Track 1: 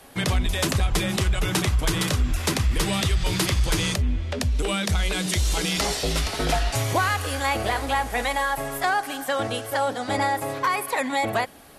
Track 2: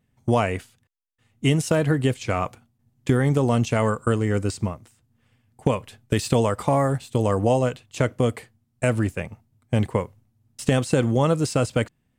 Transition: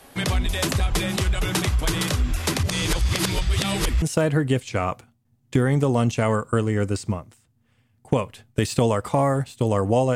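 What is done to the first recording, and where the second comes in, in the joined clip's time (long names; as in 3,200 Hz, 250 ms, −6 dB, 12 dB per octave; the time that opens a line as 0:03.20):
track 1
0:02.63–0:04.02: reverse
0:04.02: continue with track 2 from 0:01.56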